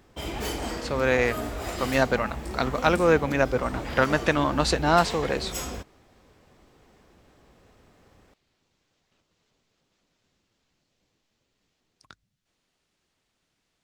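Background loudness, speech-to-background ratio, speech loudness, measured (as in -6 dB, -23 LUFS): -34.0 LUFS, 9.5 dB, -24.5 LUFS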